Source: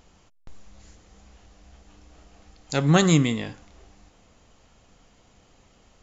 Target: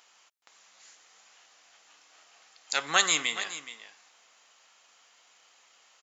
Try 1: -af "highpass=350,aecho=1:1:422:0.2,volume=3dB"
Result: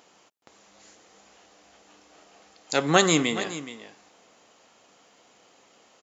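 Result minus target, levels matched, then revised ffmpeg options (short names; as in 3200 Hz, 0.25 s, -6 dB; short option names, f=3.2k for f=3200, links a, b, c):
250 Hz band +16.0 dB
-af "highpass=1.2k,aecho=1:1:422:0.2,volume=3dB"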